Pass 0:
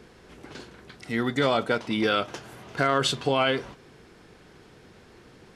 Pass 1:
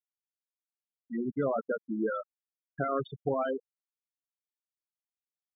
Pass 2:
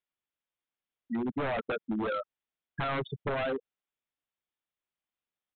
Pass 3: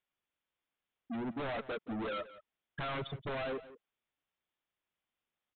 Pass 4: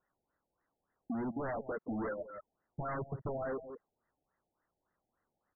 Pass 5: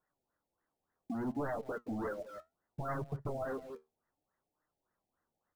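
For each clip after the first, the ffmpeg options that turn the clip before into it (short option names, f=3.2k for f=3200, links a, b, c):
-af "afftfilt=real='re*gte(hypot(re,im),0.224)':imag='im*gte(hypot(re,im),0.224)':win_size=1024:overlap=0.75,lowpass=1.3k,volume=-4.5dB"
-af "aresample=8000,aeval=exprs='0.0376*(abs(mod(val(0)/0.0376+3,4)-2)-1)':c=same,aresample=44100,acompressor=threshold=-36dB:ratio=3,volume=6dB"
-filter_complex "[0:a]aresample=8000,asoftclip=type=tanh:threshold=-40dB,aresample=44100,asplit=2[a][b];[b]adelay=174.9,volume=-16dB,highshelf=f=4k:g=-3.94[c];[a][c]amix=inputs=2:normalize=0,volume=4dB"
-af "acompressor=threshold=-49dB:ratio=5,afftfilt=real='re*lt(b*sr/1024,850*pow(2100/850,0.5+0.5*sin(2*PI*3.5*pts/sr)))':imag='im*lt(b*sr/1024,850*pow(2100/850,0.5+0.5*sin(2*PI*3.5*pts/sr)))':win_size=1024:overlap=0.75,volume=11.5dB"
-filter_complex "[0:a]asplit=2[a][b];[b]acrusher=bits=7:mix=0:aa=0.000001,volume=-12dB[c];[a][c]amix=inputs=2:normalize=0,flanger=delay=6.5:depth=6.5:regen=65:speed=0.65:shape=sinusoidal,volume=2dB"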